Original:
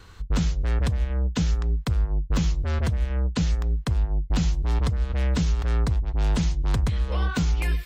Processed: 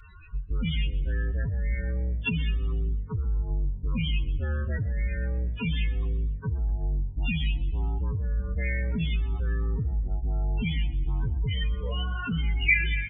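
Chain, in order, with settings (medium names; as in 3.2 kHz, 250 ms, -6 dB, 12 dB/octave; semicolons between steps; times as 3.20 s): steep low-pass 4 kHz 72 dB/octave; peaking EQ 2.3 kHz +6.5 dB 2.8 oct; loudest bins only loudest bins 16; peak limiter -21.5 dBFS, peak gain reduction 7 dB; resonant high shelf 1.8 kHz +9.5 dB, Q 3; time stretch by phase-locked vocoder 1.6×; frequency-shifting echo 120 ms, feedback 47%, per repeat +47 Hz, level -19 dB; on a send at -23 dB: reverberation RT60 0.35 s, pre-delay 4 ms; on the sum: speed mistake 25 fps video run at 24 fps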